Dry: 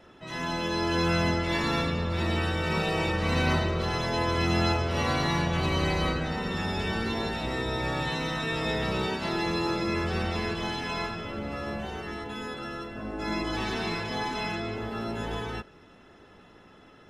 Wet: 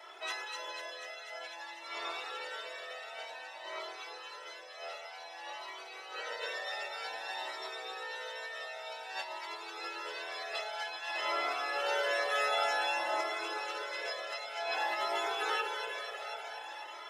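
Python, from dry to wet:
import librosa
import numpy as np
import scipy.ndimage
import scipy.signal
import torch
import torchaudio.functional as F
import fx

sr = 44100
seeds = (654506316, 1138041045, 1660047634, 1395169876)

p1 = scipy.signal.sosfilt(scipy.signal.cheby2(4, 50, 210.0, 'highpass', fs=sr, output='sos'), x)
p2 = fx.peak_eq(p1, sr, hz=1100.0, db=-5.5, octaves=0.26)
p3 = fx.over_compress(p2, sr, threshold_db=-40.0, ratio=-0.5)
p4 = p3 + fx.echo_alternate(p3, sr, ms=123, hz=1000.0, feedback_pct=87, wet_db=-4.0, dry=0)
p5 = fx.comb_cascade(p4, sr, direction='rising', hz=0.53)
y = F.gain(torch.from_numpy(p5), 4.5).numpy()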